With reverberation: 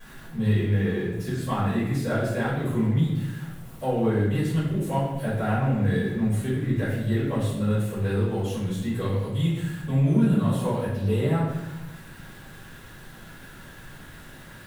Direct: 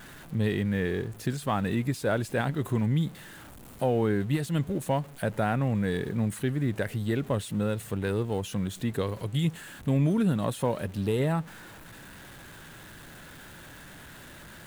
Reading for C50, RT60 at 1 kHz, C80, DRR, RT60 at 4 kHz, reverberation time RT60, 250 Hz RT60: 1.5 dB, 0.95 s, 4.0 dB, −12.0 dB, 0.80 s, 1.0 s, 1.4 s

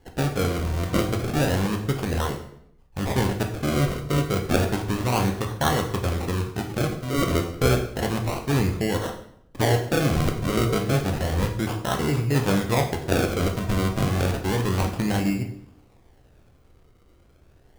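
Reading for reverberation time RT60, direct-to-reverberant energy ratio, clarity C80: 0.70 s, 3.5 dB, 11.5 dB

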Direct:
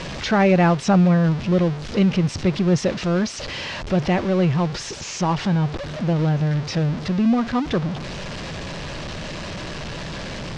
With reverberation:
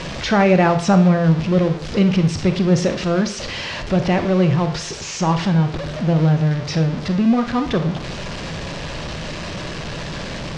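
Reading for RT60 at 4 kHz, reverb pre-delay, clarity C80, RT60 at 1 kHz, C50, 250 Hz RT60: 0.50 s, 26 ms, 15.0 dB, 0.50 s, 11.0 dB, 0.65 s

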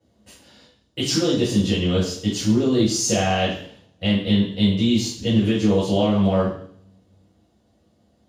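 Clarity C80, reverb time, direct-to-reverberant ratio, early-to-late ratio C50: 8.0 dB, 0.60 s, −9.5 dB, 3.0 dB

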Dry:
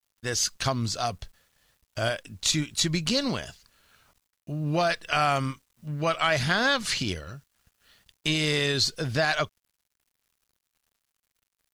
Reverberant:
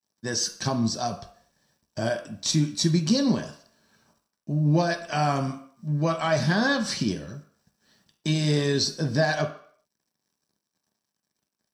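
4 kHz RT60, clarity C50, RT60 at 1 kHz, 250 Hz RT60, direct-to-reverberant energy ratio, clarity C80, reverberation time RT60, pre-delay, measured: 0.55 s, 11.5 dB, 0.55 s, 0.45 s, 2.5 dB, 14.0 dB, 0.55 s, 3 ms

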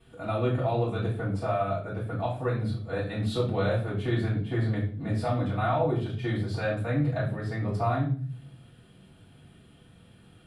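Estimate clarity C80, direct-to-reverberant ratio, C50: 11.5 dB, −9.5 dB, 7.0 dB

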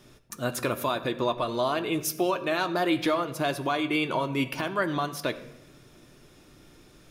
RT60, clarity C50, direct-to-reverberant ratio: 0.95 s, 14.0 dB, 7.0 dB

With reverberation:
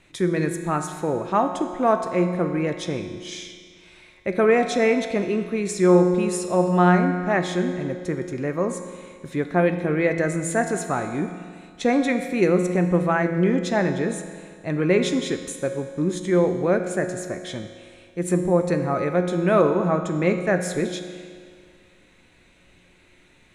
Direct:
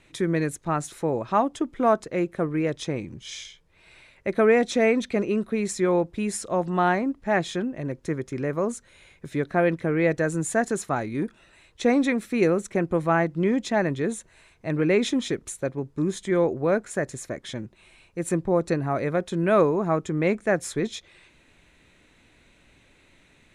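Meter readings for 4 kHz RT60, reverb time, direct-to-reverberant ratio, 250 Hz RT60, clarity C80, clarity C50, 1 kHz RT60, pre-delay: 1.8 s, 2.0 s, 5.5 dB, 2.0 s, 8.5 dB, 7.5 dB, 2.0 s, 5 ms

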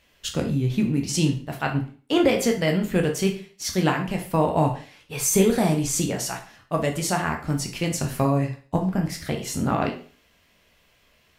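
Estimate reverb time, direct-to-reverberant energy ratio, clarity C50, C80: 0.40 s, 2.0 dB, 9.5 dB, 14.5 dB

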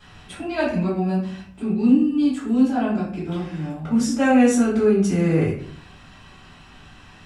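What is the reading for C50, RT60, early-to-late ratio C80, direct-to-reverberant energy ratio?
4.0 dB, 0.55 s, 8.5 dB, −10.0 dB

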